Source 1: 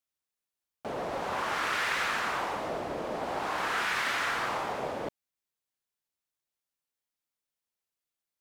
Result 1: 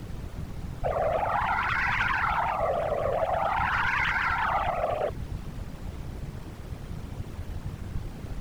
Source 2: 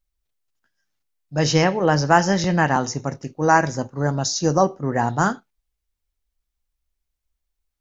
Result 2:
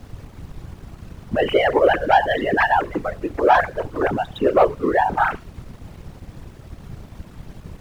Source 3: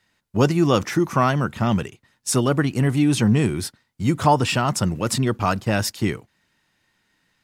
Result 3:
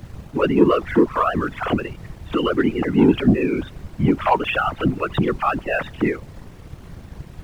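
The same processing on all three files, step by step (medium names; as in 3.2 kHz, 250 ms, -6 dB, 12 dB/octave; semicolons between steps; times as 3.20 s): formants replaced by sine waves; in parallel at +2.5 dB: compression, threshold -30 dBFS; on the sum: added noise brown -34 dBFS; waveshaping leveller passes 1; whisper effect; trim -4 dB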